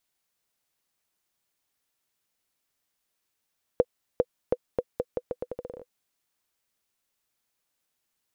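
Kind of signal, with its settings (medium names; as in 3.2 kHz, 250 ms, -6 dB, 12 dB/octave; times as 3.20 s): bouncing ball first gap 0.40 s, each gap 0.81, 496 Hz, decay 47 ms -8 dBFS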